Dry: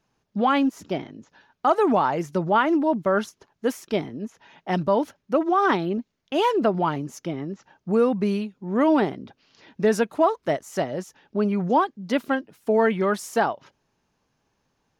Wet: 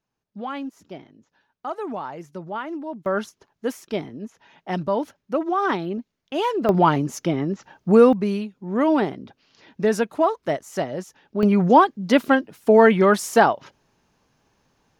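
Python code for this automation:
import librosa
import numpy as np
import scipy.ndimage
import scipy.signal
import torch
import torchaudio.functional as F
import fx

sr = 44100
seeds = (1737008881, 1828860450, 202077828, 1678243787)

y = fx.gain(x, sr, db=fx.steps((0.0, -10.5), (3.06, -2.0), (6.69, 7.0), (8.13, 0.0), (11.43, 6.5)))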